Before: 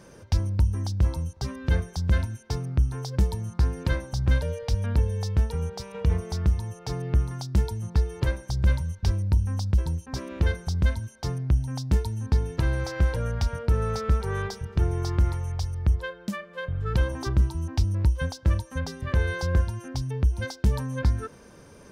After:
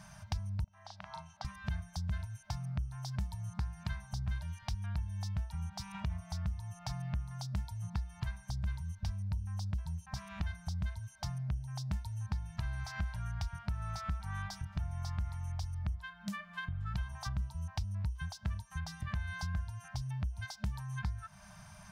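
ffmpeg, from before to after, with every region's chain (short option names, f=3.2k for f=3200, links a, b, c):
-filter_complex "[0:a]asettb=1/sr,asplit=3[a][b][c];[a]atrim=end=0.644[d];[b]atrim=start=0.64:end=1.45,asetpts=PTS-STARTPTS,afade=t=in:d=0.004:c=qsin,afade=t=out:st=0.806:d=0.004:c=qsin,acompressor=threshold=-28dB:ratio=4:attack=3.2:release=140:knee=1:detection=peak,highpass=400,lowpass=3.4k,asplit=2[e][f];[f]adelay=38,volume=-2.5dB[g];[e][g]amix=inputs=2:normalize=0,atrim=end_sample=35721[h];[c]atrim=start=1.446[i];[d][h]acrossfade=d=0.004:c1=hsin:c2=qsin[j];[j][i]acrossfade=d=0.004:c1=qsin:c2=hsin,afftfilt=real='re*(1-between(b*sr/4096,210,600))':imag='im*(1-between(b*sr/4096,210,600))':win_size=4096:overlap=0.75,acompressor=threshold=-37dB:ratio=3,volume=-1dB"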